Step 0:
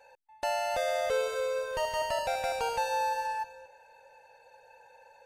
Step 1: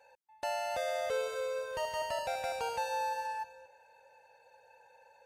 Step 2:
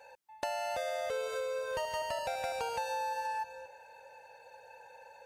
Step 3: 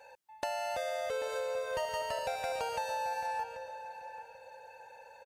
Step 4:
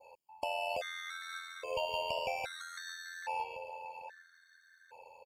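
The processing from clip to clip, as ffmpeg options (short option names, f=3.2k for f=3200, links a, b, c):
-af "highpass=56,volume=-4.5dB"
-af "acompressor=threshold=-40dB:ratio=6,volume=7dB"
-filter_complex "[0:a]asplit=2[a][b];[b]adelay=787,lowpass=f=2.2k:p=1,volume=-10dB,asplit=2[c][d];[d]adelay=787,lowpass=f=2.2k:p=1,volume=0.27,asplit=2[e][f];[f]adelay=787,lowpass=f=2.2k:p=1,volume=0.27[g];[a][c][e][g]amix=inputs=4:normalize=0"
-af "tremolo=f=85:d=0.571,adynamicequalizer=threshold=0.00112:dfrequency=2800:dqfactor=1.1:tfrequency=2800:tqfactor=1.1:attack=5:release=100:ratio=0.375:range=4:mode=boostabove:tftype=bell,afftfilt=real='re*gt(sin(2*PI*0.61*pts/sr)*(1-2*mod(floor(b*sr/1024/1100),2)),0)':imag='im*gt(sin(2*PI*0.61*pts/sr)*(1-2*mod(floor(b*sr/1024/1100),2)),0)':win_size=1024:overlap=0.75,volume=1dB"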